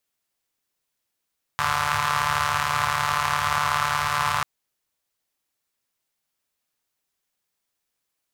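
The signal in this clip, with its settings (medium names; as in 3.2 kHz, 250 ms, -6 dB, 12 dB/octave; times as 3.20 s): four-cylinder engine model, steady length 2.84 s, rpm 4400, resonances 99/1100 Hz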